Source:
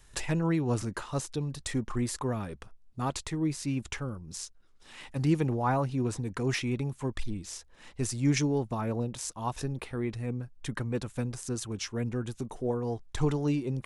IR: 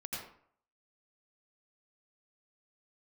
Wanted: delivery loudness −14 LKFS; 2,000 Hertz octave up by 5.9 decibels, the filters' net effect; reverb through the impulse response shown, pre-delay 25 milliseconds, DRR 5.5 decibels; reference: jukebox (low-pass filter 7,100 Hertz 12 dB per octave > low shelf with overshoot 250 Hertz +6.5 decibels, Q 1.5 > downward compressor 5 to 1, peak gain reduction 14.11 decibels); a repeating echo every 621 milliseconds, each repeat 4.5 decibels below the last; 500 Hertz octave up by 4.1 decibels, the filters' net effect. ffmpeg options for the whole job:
-filter_complex "[0:a]equalizer=frequency=500:width_type=o:gain=6.5,equalizer=frequency=2000:width_type=o:gain=7,aecho=1:1:621|1242|1863|2484|3105|3726|4347|4968|5589:0.596|0.357|0.214|0.129|0.0772|0.0463|0.0278|0.0167|0.01,asplit=2[link_01][link_02];[1:a]atrim=start_sample=2205,adelay=25[link_03];[link_02][link_03]afir=irnorm=-1:irlink=0,volume=-6dB[link_04];[link_01][link_04]amix=inputs=2:normalize=0,lowpass=7100,lowshelf=frequency=250:width_type=q:width=1.5:gain=6.5,acompressor=threshold=-28dB:ratio=5,volume=17.5dB"

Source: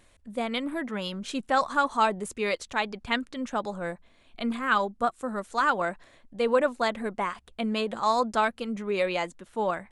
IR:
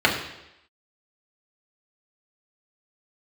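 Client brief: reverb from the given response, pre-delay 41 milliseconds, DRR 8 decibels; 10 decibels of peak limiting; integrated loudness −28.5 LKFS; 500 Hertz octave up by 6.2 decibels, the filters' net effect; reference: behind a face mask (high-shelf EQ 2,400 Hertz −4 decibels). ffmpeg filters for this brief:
-filter_complex "[0:a]equalizer=frequency=500:width_type=o:gain=7.5,alimiter=limit=-16dB:level=0:latency=1,asplit=2[link_01][link_02];[1:a]atrim=start_sample=2205,adelay=41[link_03];[link_02][link_03]afir=irnorm=-1:irlink=0,volume=-28dB[link_04];[link_01][link_04]amix=inputs=2:normalize=0,highshelf=frequency=2400:gain=-4,volume=-1dB"

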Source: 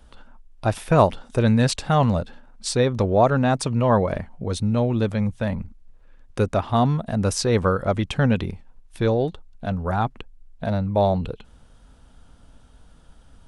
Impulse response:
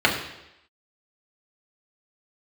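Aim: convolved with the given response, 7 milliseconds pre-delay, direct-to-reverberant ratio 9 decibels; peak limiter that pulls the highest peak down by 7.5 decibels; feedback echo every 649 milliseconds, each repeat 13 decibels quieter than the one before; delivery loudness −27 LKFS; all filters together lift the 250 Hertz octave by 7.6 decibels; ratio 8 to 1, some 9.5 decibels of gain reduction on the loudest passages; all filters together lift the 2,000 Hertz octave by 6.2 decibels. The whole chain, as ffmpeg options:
-filter_complex "[0:a]equalizer=frequency=250:width_type=o:gain=9,equalizer=frequency=2000:width_type=o:gain=8.5,acompressor=threshold=-18dB:ratio=8,alimiter=limit=-16.5dB:level=0:latency=1,aecho=1:1:649|1298|1947:0.224|0.0493|0.0108,asplit=2[link_01][link_02];[1:a]atrim=start_sample=2205,adelay=7[link_03];[link_02][link_03]afir=irnorm=-1:irlink=0,volume=-28.5dB[link_04];[link_01][link_04]amix=inputs=2:normalize=0,volume=-1dB"

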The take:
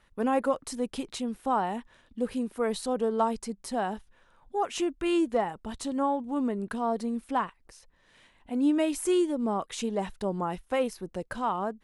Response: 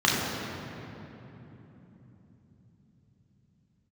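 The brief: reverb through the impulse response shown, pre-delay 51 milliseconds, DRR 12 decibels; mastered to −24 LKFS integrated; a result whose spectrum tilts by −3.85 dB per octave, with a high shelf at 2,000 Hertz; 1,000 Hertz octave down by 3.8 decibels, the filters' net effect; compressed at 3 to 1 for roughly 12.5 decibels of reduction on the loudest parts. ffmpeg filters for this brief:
-filter_complex "[0:a]equalizer=frequency=1000:width_type=o:gain=-6,highshelf=frequency=2000:gain=5,acompressor=threshold=-39dB:ratio=3,asplit=2[link_01][link_02];[1:a]atrim=start_sample=2205,adelay=51[link_03];[link_02][link_03]afir=irnorm=-1:irlink=0,volume=-29.5dB[link_04];[link_01][link_04]amix=inputs=2:normalize=0,volume=16dB"

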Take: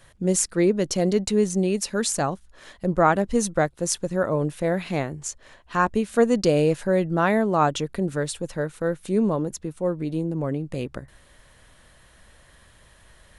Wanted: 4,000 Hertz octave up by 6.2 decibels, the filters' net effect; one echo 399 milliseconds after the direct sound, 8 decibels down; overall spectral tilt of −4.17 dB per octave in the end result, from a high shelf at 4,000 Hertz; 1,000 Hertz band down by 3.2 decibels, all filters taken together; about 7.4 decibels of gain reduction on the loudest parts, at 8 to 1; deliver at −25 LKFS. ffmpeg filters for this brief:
ffmpeg -i in.wav -af "equalizer=frequency=1000:width_type=o:gain=-5,highshelf=frequency=4000:gain=5.5,equalizer=frequency=4000:width_type=o:gain=4.5,acompressor=threshold=-21dB:ratio=8,aecho=1:1:399:0.398,volume=2dB" out.wav

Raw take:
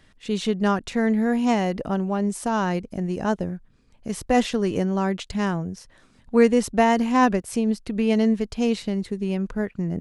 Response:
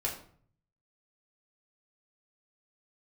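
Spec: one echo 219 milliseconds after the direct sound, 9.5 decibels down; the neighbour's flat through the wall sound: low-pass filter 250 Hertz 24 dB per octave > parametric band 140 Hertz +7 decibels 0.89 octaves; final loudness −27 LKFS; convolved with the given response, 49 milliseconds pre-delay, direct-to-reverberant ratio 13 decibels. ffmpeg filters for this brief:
-filter_complex "[0:a]aecho=1:1:219:0.335,asplit=2[link_01][link_02];[1:a]atrim=start_sample=2205,adelay=49[link_03];[link_02][link_03]afir=irnorm=-1:irlink=0,volume=-17.5dB[link_04];[link_01][link_04]amix=inputs=2:normalize=0,lowpass=frequency=250:width=0.5412,lowpass=frequency=250:width=1.3066,equalizer=frequency=140:width_type=o:width=0.89:gain=7,volume=-3dB"

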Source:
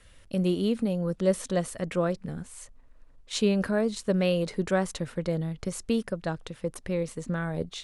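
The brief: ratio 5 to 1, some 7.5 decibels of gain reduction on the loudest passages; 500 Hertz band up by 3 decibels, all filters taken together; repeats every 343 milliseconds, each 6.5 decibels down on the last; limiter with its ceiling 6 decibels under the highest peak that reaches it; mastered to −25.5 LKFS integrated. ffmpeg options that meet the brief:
ffmpeg -i in.wav -af "equalizer=frequency=500:width_type=o:gain=3.5,acompressor=threshold=-25dB:ratio=5,alimiter=limit=-22.5dB:level=0:latency=1,aecho=1:1:343|686|1029|1372|1715|2058:0.473|0.222|0.105|0.0491|0.0231|0.0109,volume=7dB" out.wav

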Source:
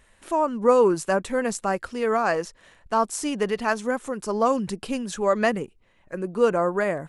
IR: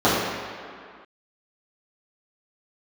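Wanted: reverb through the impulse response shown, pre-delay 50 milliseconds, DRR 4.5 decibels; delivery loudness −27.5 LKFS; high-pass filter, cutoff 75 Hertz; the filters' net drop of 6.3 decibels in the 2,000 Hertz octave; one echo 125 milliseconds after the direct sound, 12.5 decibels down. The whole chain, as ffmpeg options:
-filter_complex "[0:a]highpass=75,equalizer=frequency=2000:width_type=o:gain=-8.5,aecho=1:1:125:0.237,asplit=2[link_01][link_02];[1:a]atrim=start_sample=2205,adelay=50[link_03];[link_02][link_03]afir=irnorm=-1:irlink=0,volume=-28dB[link_04];[link_01][link_04]amix=inputs=2:normalize=0,volume=-5dB"

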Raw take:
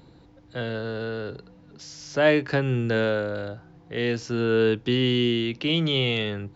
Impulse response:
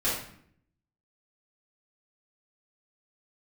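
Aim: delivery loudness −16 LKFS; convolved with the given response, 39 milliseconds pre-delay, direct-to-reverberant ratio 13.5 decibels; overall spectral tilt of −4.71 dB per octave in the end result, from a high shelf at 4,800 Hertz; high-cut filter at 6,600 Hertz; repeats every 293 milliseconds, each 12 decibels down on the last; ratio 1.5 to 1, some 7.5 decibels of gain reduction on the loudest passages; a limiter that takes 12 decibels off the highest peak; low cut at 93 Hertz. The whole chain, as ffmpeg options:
-filter_complex "[0:a]highpass=93,lowpass=6600,highshelf=frequency=4800:gain=-6.5,acompressor=threshold=-35dB:ratio=1.5,alimiter=level_in=3dB:limit=-24dB:level=0:latency=1,volume=-3dB,aecho=1:1:293|586|879:0.251|0.0628|0.0157,asplit=2[link_01][link_02];[1:a]atrim=start_sample=2205,adelay=39[link_03];[link_02][link_03]afir=irnorm=-1:irlink=0,volume=-23.5dB[link_04];[link_01][link_04]amix=inputs=2:normalize=0,volume=20dB"

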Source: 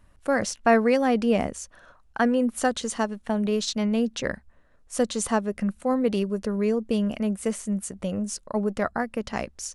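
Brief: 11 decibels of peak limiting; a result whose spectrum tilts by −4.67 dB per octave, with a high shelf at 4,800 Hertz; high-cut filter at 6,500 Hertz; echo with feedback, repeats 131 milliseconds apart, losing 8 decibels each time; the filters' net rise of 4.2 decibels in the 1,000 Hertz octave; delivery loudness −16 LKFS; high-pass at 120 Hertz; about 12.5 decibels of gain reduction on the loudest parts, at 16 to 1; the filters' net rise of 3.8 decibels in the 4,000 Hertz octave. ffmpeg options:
ffmpeg -i in.wav -af "highpass=120,lowpass=6500,equalizer=frequency=1000:width_type=o:gain=6,equalizer=frequency=4000:width_type=o:gain=7,highshelf=frequency=4800:gain=-4,acompressor=threshold=-23dB:ratio=16,alimiter=limit=-21.5dB:level=0:latency=1,aecho=1:1:131|262|393|524|655:0.398|0.159|0.0637|0.0255|0.0102,volume=14.5dB" out.wav

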